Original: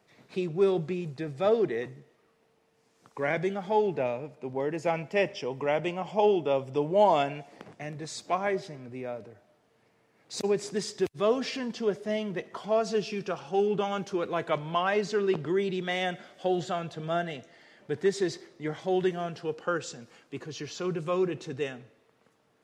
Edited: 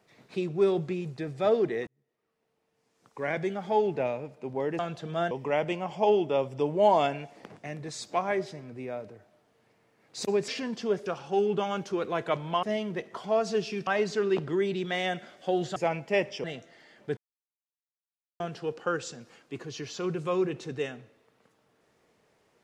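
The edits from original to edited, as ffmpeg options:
-filter_complex "[0:a]asplit=12[s0][s1][s2][s3][s4][s5][s6][s7][s8][s9][s10][s11];[s0]atrim=end=1.87,asetpts=PTS-STARTPTS,afade=t=out:st=1.866:d=0.004:c=hsin[s12];[s1]atrim=start=1.87:end=4.792,asetpts=PTS-STARTPTS,afade=t=in:d=1.85[s13];[s2]atrim=start=16.728:end=17.252[s14];[s3]atrim=start=5.468:end=10.642[s15];[s4]atrim=start=11.448:end=12.032[s16];[s5]atrim=start=13.268:end=14.842[s17];[s6]atrim=start=12.028:end=13.272[s18];[s7]atrim=start=14.838:end=16.732[s19];[s8]atrim=start=4.788:end=5.472[s20];[s9]atrim=start=17.248:end=17.98,asetpts=PTS-STARTPTS,afade=t=out:st=0.728:d=0.004:c=hsin[s21];[s10]atrim=start=17.98:end=19.21,asetpts=PTS-STARTPTS,volume=0[s22];[s11]atrim=start=19.21,asetpts=PTS-STARTPTS,afade=t=in:d=0.004:c=hsin[s23];[s12][s13]concat=n=2:v=0:a=1[s24];[s24][s14]acrossfade=d=0.004:c1=hsin:c2=hsin[s25];[s25][s15]acrossfade=d=0.004:c1=hsin:c2=hsin[s26];[s26][s16]acrossfade=d=0.004:c1=hsin:c2=hsin[s27];[s27][s17]acrossfade=d=0.004:c1=hsin:c2=hsin[s28];[s28][s18]acrossfade=d=0.004:c1=hsin:c2=hsin[s29];[s29][s19]acrossfade=d=0.004:c1=hsin:c2=hsin[s30];[s30][s20]acrossfade=d=0.004:c1=hsin:c2=hsin[s31];[s21][s22][s23]concat=n=3:v=0:a=1[s32];[s31][s32]acrossfade=d=0.004:c1=hsin:c2=hsin"

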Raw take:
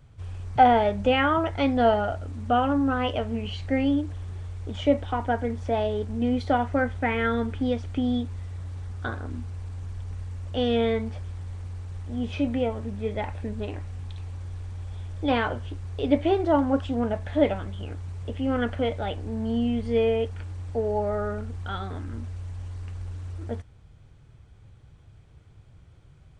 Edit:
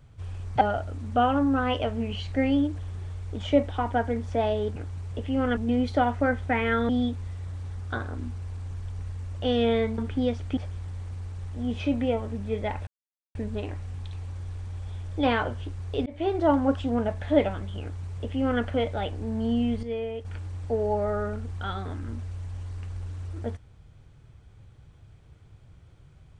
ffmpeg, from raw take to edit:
-filter_complex "[0:a]asplit=11[s0][s1][s2][s3][s4][s5][s6][s7][s8][s9][s10];[s0]atrim=end=0.612[s11];[s1]atrim=start=1.948:end=6.102[s12];[s2]atrim=start=17.868:end=18.682[s13];[s3]atrim=start=6.098:end=7.422[s14];[s4]atrim=start=8.008:end=11.102[s15];[s5]atrim=start=7.418:end=8.012[s16];[s6]atrim=start=11.098:end=13.4,asetpts=PTS-STARTPTS,afade=t=out:st=2.298:d=0.004:c=hsin,apad=pad_dur=0.48[s17];[s7]atrim=start=13.4:end=16.11,asetpts=PTS-STARTPTS,afade=t=in:d=0.004:c=hsin,afade=t=out:st=2.706:d=0.004:c=hsin[s18];[s8]atrim=start=16.11:end=19.882,asetpts=PTS-STARTPTS,afade=t=in:d=0.49:c=qsin[s19];[s9]atrim=start=19.878:end=20.302,asetpts=PTS-STARTPTS,volume=0.355[s20];[s10]atrim=start=20.298[s21];[s11][s12]acrossfade=d=0.004:c1=hsin:c2=hsin[s22];[s22][s13]acrossfade=d=0.004:c1=hsin:c2=hsin[s23];[s23][s14]acrossfade=d=0.004:c1=hsin:c2=hsin[s24];[s24][s15]acrossfade=d=0.004:c1=hsin:c2=hsin[s25];[s25][s16]acrossfade=d=0.004:c1=hsin:c2=hsin[s26];[s17][s18][s19]concat=n=3:v=0:a=1[s27];[s26][s27]acrossfade=d=0.004:c1=hsin:c2=hsin[s28];[s28][s20]acrossfade=d=0.004:c1=hsin:c2=hsin[s29];[s29][s21]acrossfade=d=0.004:c1=hsin:c2=hsin"

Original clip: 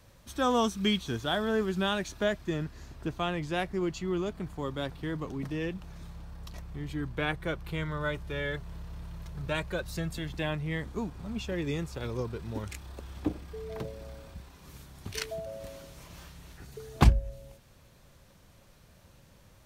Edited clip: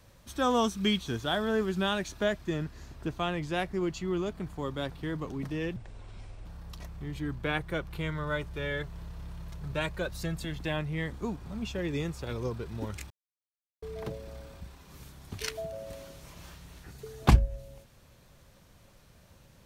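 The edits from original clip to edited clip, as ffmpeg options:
-filter_complex "[0:a]asplit=5[s0][s1][s2][s3][s4];[s0]atrim=end=5.764[s5];[s1]atrim=start=5.76:end=6.19,asetpts=PTS-STARTPTS,asetrate=27342,aresample=44100,atrim=end_sample=30585,asetpts=PTS-STARTPTS[s6];[s2]atrim=start=6.186:end=12.84,asetpts=PTS-STARTPTS,afade=t=out:st=6.65:d=0.004:c=hsin[s7];[s3]atrim=start=12.84:end=13.56,asetpts=PTS-STARTPTS,volume=0[s8];[s4]atrim=start=13.56,asetpts=PTS-STARTPTS,afade=t=in:d=0.004:c=hsin[s9];[s5][s6]acrossfade=d=0.004:c1=hsin:c2=hsin[s10];[s7][s8][s9]concat=n=3:v=0:a=1[s11];[s10][s11]acrossfade=d=0.004:c1=hsin:c2=hsin"

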